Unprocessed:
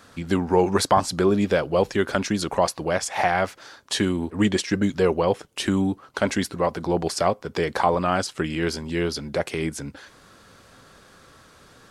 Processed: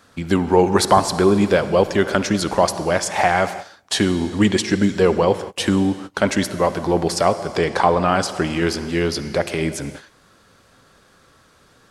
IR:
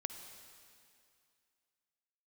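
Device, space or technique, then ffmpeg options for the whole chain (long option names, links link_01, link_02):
keyed gated reverb: -filter_complex "[0:a]asplit=3[link_01][link_02][link_03];[1:a]atrim=start_sample=2205[link_04];[link_02][link_04]afir=irnorm=-1:irlink=0[link_05];[link_03]apad=whole_len=524826[link_06];[link_05][link_06]sidechaingate=range=-28dB:threshold=-40dB:ratio=16:detection=peak,volume=4.5dB[link_07];[link_01][link_07]amix=inputs=2:normalize=0,asettb=1/sr,asplit=3[link_08][link_09][link_10];[link_08]atrim=end=7.574[link_11];[link_09]atrim=start=7.57:end=8.07,asetpts=PTS-STARTPTS,afade=type=in:duration=0.004:curve=qsin,afade=type=out:start_time=0.496:duration=0.004:curve=qsin,lowpass=frequency=10000:width=0.5412,lowpass=frequency=10000:width=1.3066[link_12];[link_10]atrim=start=8.066[link_13];[link_11][link_12]acrossfade=duration=0.004:curve1=hsin:curve2=qsin[link_14];[link_14][link_13]acrossfade=duration=0.004:curve1=qsin:curve2=hsin,volume=-3dB"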